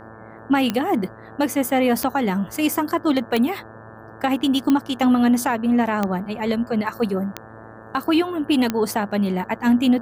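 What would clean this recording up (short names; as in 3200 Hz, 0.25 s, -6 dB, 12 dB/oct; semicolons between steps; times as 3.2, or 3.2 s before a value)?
de-click; de-hum 111 Hz, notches 16; noise print and reduce 24 dB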